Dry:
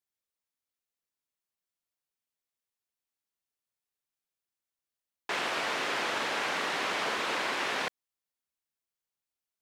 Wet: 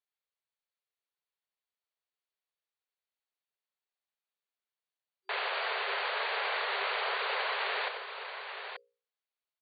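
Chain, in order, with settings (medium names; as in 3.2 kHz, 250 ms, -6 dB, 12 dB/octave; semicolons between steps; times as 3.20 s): hum notches 60/120/180/240/300/360/420/480/540 Hz; multi-tap echo 93/884 ms -9/-8 dB; FFT band-pass 380–4700 Hz; trim -2 dB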